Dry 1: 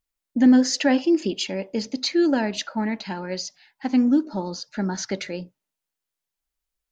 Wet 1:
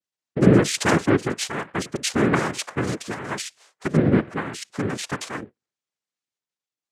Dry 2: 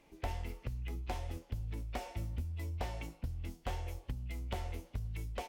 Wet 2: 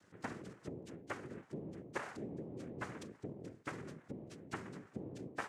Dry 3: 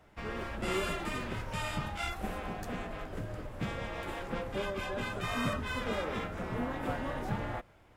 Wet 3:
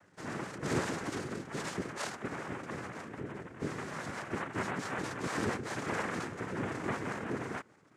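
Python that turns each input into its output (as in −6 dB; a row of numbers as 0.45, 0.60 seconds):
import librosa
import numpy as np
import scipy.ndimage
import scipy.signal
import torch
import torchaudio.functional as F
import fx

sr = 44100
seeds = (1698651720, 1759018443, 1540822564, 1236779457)

y = fx.envelope_sharpen(x, sr, power=1.5)
y = fx.noise_vocoder(y, sr, seeds[0], bands=3)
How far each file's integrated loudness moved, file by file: 0.0, −5.5, −1.0 LU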